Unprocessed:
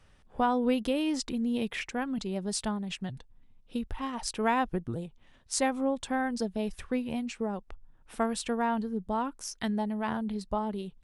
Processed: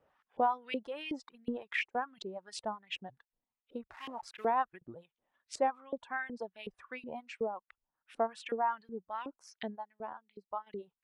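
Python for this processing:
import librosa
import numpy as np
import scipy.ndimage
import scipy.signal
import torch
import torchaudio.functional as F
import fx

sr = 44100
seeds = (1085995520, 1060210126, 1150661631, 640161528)

y = fx.delta_hold(x, sr, step_db=-40.5, at=(3.87, 4.59))
y = fx.filter_lfo_bandpass(y, sr, shape='saw_up', hz=2.7, low_hz=450.0, high_hz=2800.0, q=1.8)
y = fx.dereverb_blind(y, sr, rt60_s=1.7)
y = fx.transient(y, sr, attack_db=5, sustain_db=-10, at=(1.25, 2.0), fade=0.02)
y = fx.upward_expand(y, sr, threshold_db=-55.0, expansion=1.5, at=(9.75, 10.66), fade=0.02)
y = y * 10.0 ** (1.5 / 20.0)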